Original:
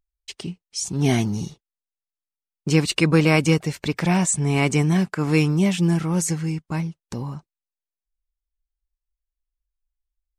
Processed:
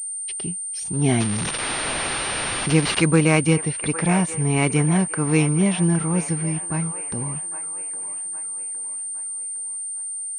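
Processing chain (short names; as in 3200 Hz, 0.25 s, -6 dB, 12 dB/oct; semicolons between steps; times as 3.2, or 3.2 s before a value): 1.2–3.02 switching spikes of -14 dBFS; band-limited delay 0.812 s, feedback 46%, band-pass 1100 Hz, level -9 dB; pulse-width modulation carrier 8900 Hz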